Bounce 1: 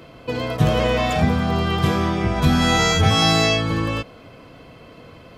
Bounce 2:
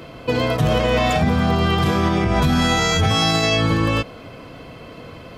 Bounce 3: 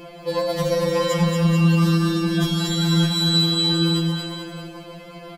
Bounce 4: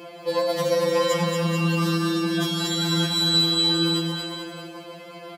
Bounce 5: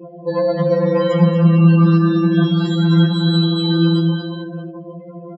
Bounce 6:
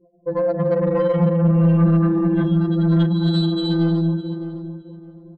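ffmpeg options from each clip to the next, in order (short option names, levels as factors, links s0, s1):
-af "alimiter=limit=0.188:level=0:latency=1:release=81,volume=1.88"
-filter_complex "[0:a]highshelf=f=6200:g=4,asplit=2[s0][s1];[s1]aecho=0:1:230|437|623.3|791|941.9:0.631|0.398|0.251|0.158|0.1[s2];[s0][s2]amix=inputs=2:normalize=0,afftfilt=real='re*2.83*eq(mod(b,8),0)':imag='im*2.83*eq(mod(b,8),0)':win_size=2048:overlap=0.75"
-af "highpass=240"
-filter_complex "[0:a]aemphasis=mode=reproduction:type=riaa,afftdn=nr=33:nf=-33,asplit=2[s0][s1];[s1]aecho=0:1:11|76:0.299|0.141[s2];[s0][s2]amix=inputs=2:normalize=0,volume=1.5"
-filter_complex "[0:a]anlmdn=6310,acontrast=82,asplit=2[s0][s1];[s1]adelay=612,lowpass=f=2100:p=1,volume=0.251,asplit=2[s2][s3];[s3]adelay=612,lowpass=f=2100:p=1,volume=0.25,asplit=2[s4][s5];[s5]adelay=612,lowpass=f=2100:p=1,volume=0.25[s6];[s0][s2][s4][s6]amix=inputs=4:normalize=0,volume=0.376"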